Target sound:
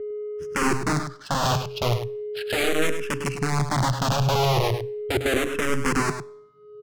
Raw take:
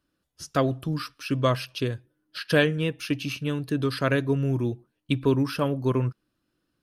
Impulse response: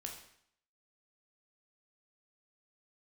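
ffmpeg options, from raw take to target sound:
-filter_complex "[0:a]equalizer=f=130:t=o:w=1.2:g=12.5,bandreject=f=790:w=12,asplit=2[s0][s1];[s1]acompressor=threshold=0.0631:ratio=5,volume=1.06[s2];[s0][s2]amix=inputs=2:normalize=0,aeval=exprs='(mod(3.76*val(0)+1,2)-1)/3.76':c=same,aeval=exprs='val(0)+0.0562*sin(2*PI*420*n/s)':c=same,adynamicsmooth=sensitivity=3.5:basefreq=1200,aecho=1:1:103:0.335,asplit=2[s3][s4];[1:a]atrim=start_sample=2205,asetrate=43659,aresample=44100[s5];[s4][s5]afir=irnorm=-1:irlink=0,volume=0.2[s6];[s3][s6]amix=inputs=2:normalize=0,asplit=2[s7][s8];[s8]afreqshift=-0.38[s9];[s7][s9]amix=inputs=2:normalize=1,volume=0.596"

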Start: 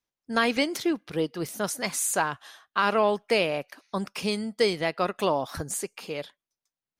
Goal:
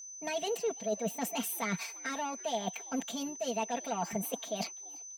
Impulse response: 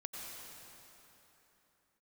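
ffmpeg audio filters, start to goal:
-filter_complex "[0:a]asoftclip=type=tanh:threshold=0.0891,equalizer=f=125:t=o:w=1:g=12,equalizer=f=500:t=o:w=1:g=11,equalizer=f=1000:t=o:w=1:g=-4,equalizer=f=2000:t=o:w=1:g=7,agate=range=0.282:threshold=0.00501:ratio=16:detection=peak,asetrate=59535,aresample=44100,areverse,acompressor=threshold=0.0112:ratio=16,areverse,highpass=f=68:p=1,aecho=1:1:4.4:1,aeval=exprs='val(0)+0.00398*sin(2*PI*6100*n/s)':c=same,asplit=2[s0][s1];[s1]asplit=2[s2][s3];[s2]adelay=338,afreqshift=97,volume=0.0631[s4];[s3]adelay=676,afreqshift=194,volume=0.0226[s5];[s4][s5]amix=inputs=2:normalize=0[s6];[s0][s6]amix=inputs=2:normalize=0,volume=1.58"

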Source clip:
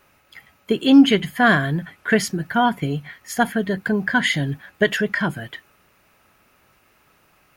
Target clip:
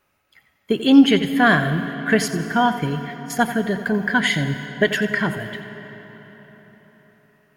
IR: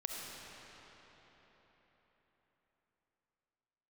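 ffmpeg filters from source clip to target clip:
-filter_complex "[0:a]agate=range=0.316:threshold=0.0141:ratio=16:detection=peak,asplit=2[s0][s1];[1:a]atrim=start_sample=2205,adelay=88[s2];[s1][s2]afir=irnorm=-1:irlink=0,volume=0.299[s3];[s0][s3]amix=inputs=2:normalize=0"

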